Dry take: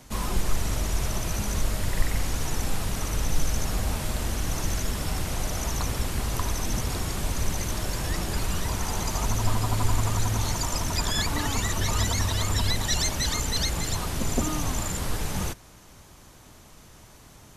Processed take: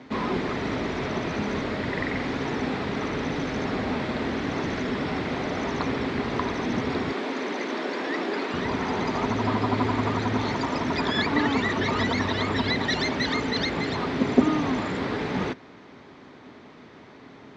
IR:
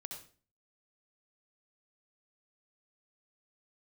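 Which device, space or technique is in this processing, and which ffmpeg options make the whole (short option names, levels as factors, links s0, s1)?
kitchen radio: -filter_complex "[0:a]asettb=1/sr,asplit=3[s0][s1][s2];[s0]atrim=end=7.124[s3];[s1]atrim=start=7.12:end=8.54,asetpts=PTS-STARTPTS,afade=t=in:d=0.004:c=qsin,afade=t=out:st=1.416:d=0.004:c=qsin,highpass=f=250:w=0.5412,highpass=f=250:w=1.3066[s4];[s2]atrim=start=8.536[s5];[s3][s4]acrossfade=d=0.004:c1=hsin:c2=qsin[s6];[s6][s5]acrossfade=d=0.004:c1=qsin:c2=hsin,highpass=170,equalizer=f=260:t=q:w=4:g=9,equalizer=f=410:t=q:w=4:g=7,equalizer=f=2000:t=q:w=4:g=4,equalizer=f=2900:t=q:w=4:g=-5,lowpass=f=3700:w=0.5412,lowpass=f=3700:w=1.3066,volume=1.68"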